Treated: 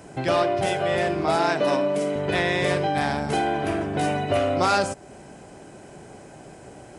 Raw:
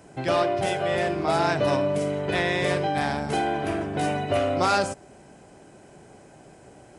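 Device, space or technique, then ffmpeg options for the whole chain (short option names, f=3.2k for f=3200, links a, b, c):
parallel compression: -filter_complex "[0:a]asplit=2[a][b];[b]acompressor=threshold=-36dB:ratio=6,volume=-1dB[c];[a][c]amix=inputs=2:normalize=0,asettb=1/sr,asplit=3[d][e][f];[d]atrim=end=1.354[g];[e]atrim=start=1.35:end=2.16,asetpts=PTS-STARTPTS,afade=t=in:d=0.004:c=qsin,afade=t=out:st=0.806:d=0.004:c=qsin,highpass=f=180:w=0.5412,highpass=f=180:w=1.3066[h];[f]atrim=start=2.156[i];[g][h]acrossfade=d=0.004:c1=hsin:c2=qsin[j];[j][i]acrossfade=d=0.004:c1=qsin:c2=hsin"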